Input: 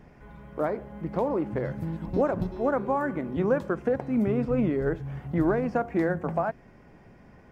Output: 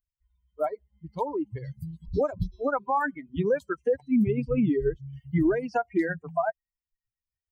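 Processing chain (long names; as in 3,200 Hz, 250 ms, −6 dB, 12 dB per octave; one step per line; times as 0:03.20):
spectral dynamics exaggerated over time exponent 3
brickwall limiter −25.5 dBFS, peak gain reduction 8 dB
0:05.13–0:05.80: one half of a high-frequency compander encoder only
level +9 dB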